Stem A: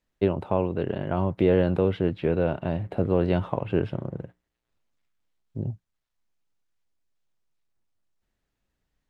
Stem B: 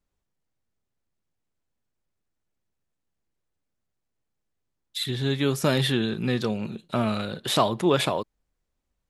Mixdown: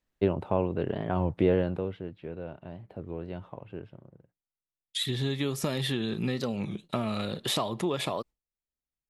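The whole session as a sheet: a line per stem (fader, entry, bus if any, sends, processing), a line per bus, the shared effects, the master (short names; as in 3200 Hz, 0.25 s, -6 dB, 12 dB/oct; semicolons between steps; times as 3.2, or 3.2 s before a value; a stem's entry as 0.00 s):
1.46 s -2.5 dB -> 2.1 s -15 dB -> 4.16 s -15 dB -> 4.55 s -22 dB, 0.00 s, no send, auto duck -15 dB, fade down 1.30 s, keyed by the second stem
0.0 dB, 0.00 s, no send, gate with hold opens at -36 dBFS; notch 1500 Hz, Q 8; compressor 6:1, threshold -26 dBFS, peak gain reduction 10 dB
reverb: off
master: record warp 33 1/3 rpm, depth 160 cents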